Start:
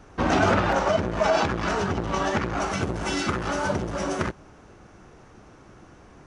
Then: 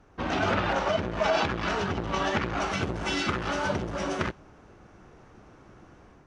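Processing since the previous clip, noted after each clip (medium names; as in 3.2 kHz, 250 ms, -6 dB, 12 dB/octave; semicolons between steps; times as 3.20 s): dynamic bell 3.3 kHz, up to +7 dB, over -42 dBFS, Q 0.82; level rider gain up to 6 dB; treble shelf 6.9 kHz -10.5 dB; trim -8.5 dB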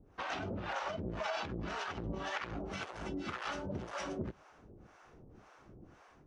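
compression, threshold -30 dBFS, peak gain reduction 9.5 dB; harmonic tremolo 1.9 Hz, depth 100%, crossover 560 Hz; trim -1 dB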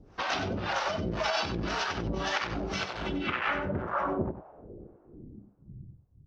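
low-pass sweep 5.2 kHz -> 110 Hz, 2.76–6.01 s; delay 94 ms -10.5 dB; trim +7 dB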